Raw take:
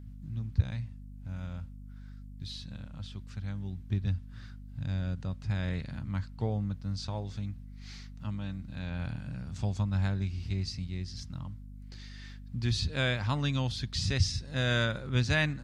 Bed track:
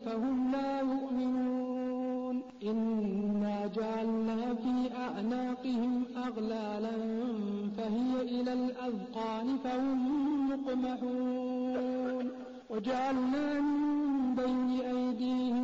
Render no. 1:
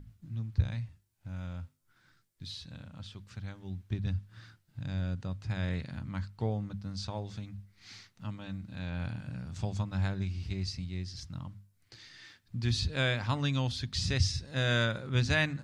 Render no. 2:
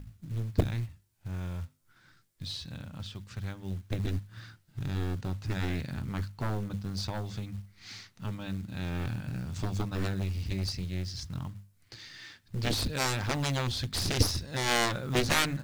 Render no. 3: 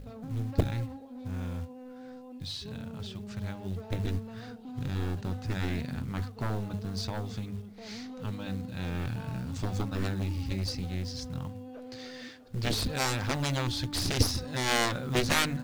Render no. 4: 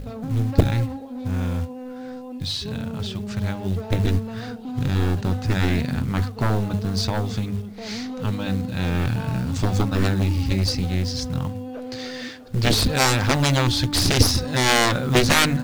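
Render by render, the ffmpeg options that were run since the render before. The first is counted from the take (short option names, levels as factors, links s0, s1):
-af "bandreject=f=50:t=h:w=6,bandreject=f=100:t=h:w=6,bandreject=f=150:t=h:w=6,bandreject=f=200:t=h:w=6,bandreject=f=250:t=h:w=6"
-af "aeval=exprs='0.2*(cos(1*acos(clip(val(0)/0.2,-1,1)))-cos(1*PI/2))+0.0316*(cos(6*acos(clip(val(0)/0.2,-1,1)))-cos(6*PI/2))+0.0794*(cos(7*acos(clip(val(0)/0.2,-1,1)))-cos(7*PI/2))':c=same,acrusher=bits=6:mode=log:mix=0:aa=0.000001"
-filter_complex "[1:a]volume=0.282[s0];[0:a][s0]amix=inputs=2:normalize=0"
-af "volume=3.55,alimiter=limit=0.708:level=0:latency=1"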